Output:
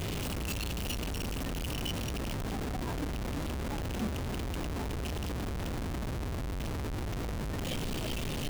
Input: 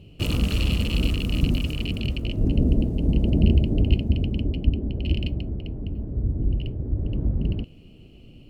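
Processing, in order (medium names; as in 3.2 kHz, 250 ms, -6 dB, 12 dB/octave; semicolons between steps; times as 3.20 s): one-bit comparator; spectral noise reduction 9 dB; trim -3 dB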